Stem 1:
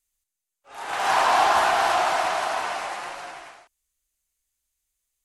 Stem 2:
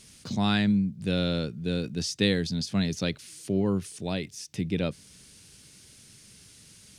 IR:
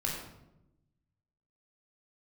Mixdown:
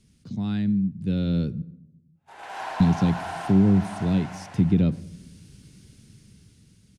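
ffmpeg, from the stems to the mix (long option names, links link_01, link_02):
-filter_complex "[0:a]agate=range=-24dB:threshold=-38dB:ratio=16:detection=peak,highshelf=frequency=3800:gain=-6.5,bandreject=frequency=1200:width=7.6,adelay=1500,volume=-11.5dB,asplit=2[link_01][link_02];[link_02]volume=-5.5dB[link_03];[1:a]firequalizer=gain_entry='entry(200,0);entry(610,-13);entry(7900,-17)':delay=0.05:min_phase=1,dynaudnorm=framelen=410:gausssize=7:maxgain=11dB,volume=-1dB,asplit=3[link_04][link_05][link_06];[link_04]atrim=end=1.62,asetpts=PTS-STARTPTS,afade=type=out:start_time=1.616:duration=0.004:curve=hsin[link_07];[link_05]atrim=start=1.62:end=2.8,asetpts=PTS-STARTPTS,volume=0[link_08];[link_06]atrim=start=2.8,asetpts=PTS-STARTPTS,afade=type=in:duration=0.004:curve=hsin[link_09];[link_07][link_08][link_09]concat=n=3:v=0:a=1,asplit=2[link_10][link_11];[link_11]volume=-22.5dB[link_12];[2:a]atrim=start_sample=2205[link_13];[link_12][link_13]afir=irnorm=-1:irlink=0[link_14];[link_03]aecho=0:1:101:1[link_15];[link_01][link_10][link_14][link_15]amix=inputs=4:normalize=0,acrossover=split=300[link_16][link_17];[link_17]acompressor=threshold=-29dB:ratio=3[link_18];[link_16][link_18]amix=inputs=2:normalize=0"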